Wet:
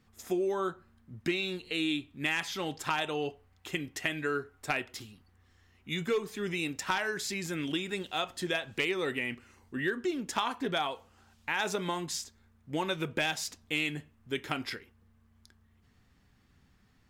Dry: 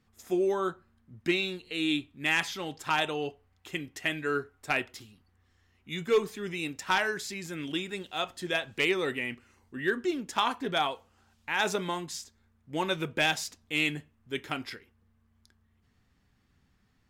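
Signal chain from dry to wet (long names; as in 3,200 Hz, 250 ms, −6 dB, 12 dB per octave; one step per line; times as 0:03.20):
downward compressor 3 to 1, threshold −33 dBFS, peak gain reduction 10.5 dB
level +3.5 dB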